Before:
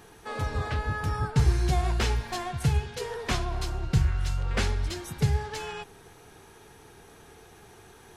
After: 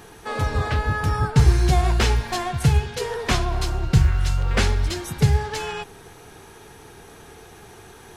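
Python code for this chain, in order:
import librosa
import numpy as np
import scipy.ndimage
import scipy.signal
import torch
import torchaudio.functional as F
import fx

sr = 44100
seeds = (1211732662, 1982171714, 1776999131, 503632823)

y = fx.quant_float(x, sr, bits=6)
y = y * librosa.db_to_amplitude(7.0)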